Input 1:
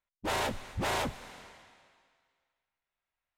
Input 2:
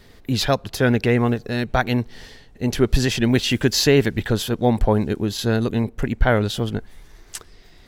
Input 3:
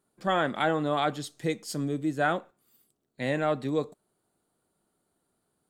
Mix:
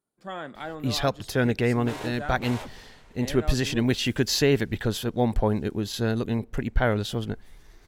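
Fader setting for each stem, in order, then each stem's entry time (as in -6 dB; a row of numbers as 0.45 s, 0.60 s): -7.0 dB, -5.5 dB, -10.0 dB; 1.60 s, 0.55 s, 0.00 s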